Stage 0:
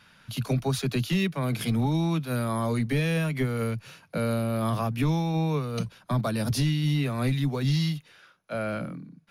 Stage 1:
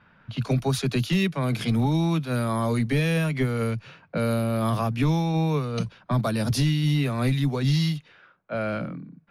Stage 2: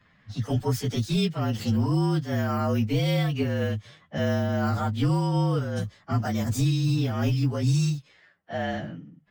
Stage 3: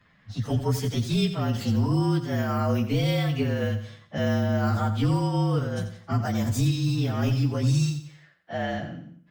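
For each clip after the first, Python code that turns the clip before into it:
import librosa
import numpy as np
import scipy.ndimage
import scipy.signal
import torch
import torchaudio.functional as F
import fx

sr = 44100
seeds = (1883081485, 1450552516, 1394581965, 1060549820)

y1 = fx.env_lowpass(x, sr, base_hz=1500.0, full_db=-22.0)
y1 = y1 * librosa.db_to_amplitude(2.5)
y2 = fx.partial_stretch(y1, sr, pct=112)
y3 = fx.echo_feedback(y2, sr, ms=87, feedback_pct=38, wet_db=-11)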